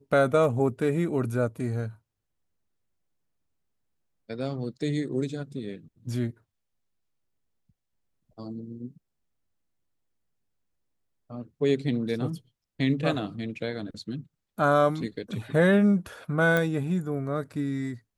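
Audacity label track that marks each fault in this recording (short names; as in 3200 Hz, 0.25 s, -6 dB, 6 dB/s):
16.570000	16.570000	pop -13 dBFS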